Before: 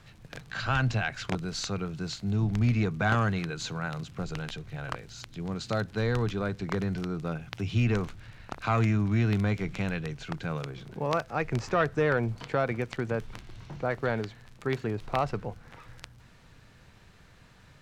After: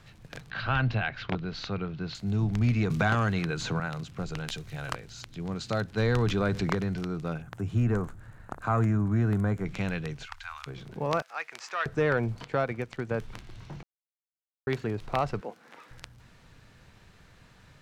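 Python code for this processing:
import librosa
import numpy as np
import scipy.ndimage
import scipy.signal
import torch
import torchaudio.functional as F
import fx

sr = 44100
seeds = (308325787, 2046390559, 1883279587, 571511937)

y = fx.lowpass(x, sr, hz=4100.0, slope=24, at=(0.5, 2.15))
y = fx.band_squash(y, sr, depth_pct=70, at=(2.9, 3.8))
y = fx.high_shelf(y, sr, hz=4400.0, db=11.0, at=(4.48, 4.96))
y = fx.env_flatten(y, sr, amount_pct=50, at=(5.97, 6.73), fade=0.02)
y = fx.band_shelf(y, sr, hz=3500.0, db=-13.5, octaves=1.7, at=(7.42, 9.66))
y = fx.cheby2_bandstop(y, sr, low_hz=120.0, high_hz=540.0, order=4, stop_db=40, at=(10.25, 10.66), fade=0.02)
y = fx.highpass(y, sr, hz=1200.0, slope=12, at=(11.22, 11.86))
y = fx.upward_expand(y, sr, threshold_db=-36.0, expansion=1.5, at=(12.44, 13.11))
y = fx.highpass(y, sr, hz=230.0, slope=24, at=(15.41, 15.91))
y = fx.edit(y, sr, fx.silence(start_s=13.83, length_s=0.84), tone=tone)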